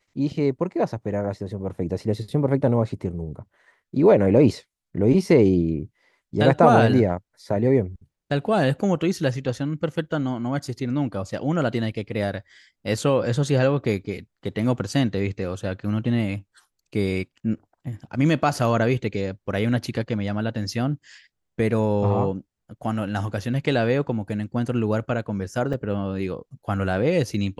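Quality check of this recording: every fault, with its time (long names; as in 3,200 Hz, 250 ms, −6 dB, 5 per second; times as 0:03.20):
0:25.73–0:25.74: drop-out 5.4 ms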